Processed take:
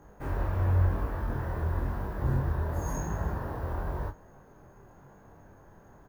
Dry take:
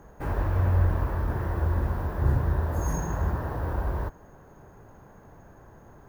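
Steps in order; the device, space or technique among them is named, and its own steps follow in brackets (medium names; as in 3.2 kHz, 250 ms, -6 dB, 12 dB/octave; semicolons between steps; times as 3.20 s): double-tracked vocal (doubling 30 ms -8 dB; chorus 0.94 Hz, delay 19.5 ms, depth 5.5 ms); trim -1 dB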